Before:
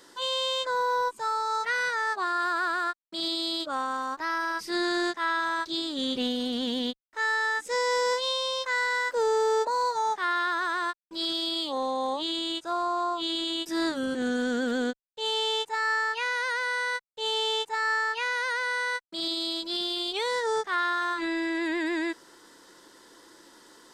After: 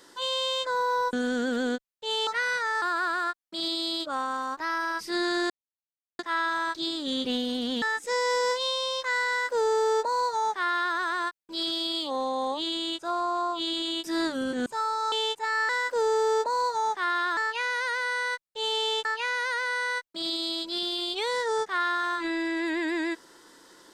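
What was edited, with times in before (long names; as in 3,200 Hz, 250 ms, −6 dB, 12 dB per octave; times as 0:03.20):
0:01.13–0:01.59: swap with 0:14.28–0:15.42
0:02.14–0:02.42: remove
0:05.10: splice in silence 0.69 s
0:06.73–0:07.44: remove
0:08.90–0:10.58: duplicate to 0:15.99
0:17.67–0:18.03: remove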